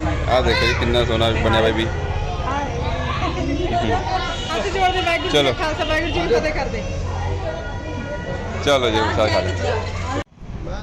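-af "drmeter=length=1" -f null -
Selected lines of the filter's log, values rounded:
Channel 1: DR: 7.2
Overall DR: 7.2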